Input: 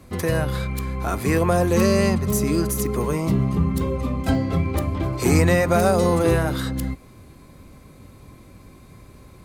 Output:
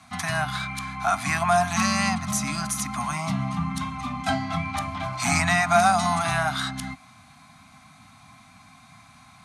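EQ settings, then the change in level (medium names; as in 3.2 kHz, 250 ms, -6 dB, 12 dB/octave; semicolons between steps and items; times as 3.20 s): elliptic band-stop 270–700 Hz, stop band 40 dB; cabinet simulation 150–8800 Hz, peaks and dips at 280 Hz -4 dB, 950 Hz -8 dB, 1.8 kHz -5 dB, 2.8 kHz -4 dB, 4.8 kHz -5 dB, 7.6 kHz -7 dB; resonant low shelf 570 Hz -9 dB, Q 1.5; +7.0 dB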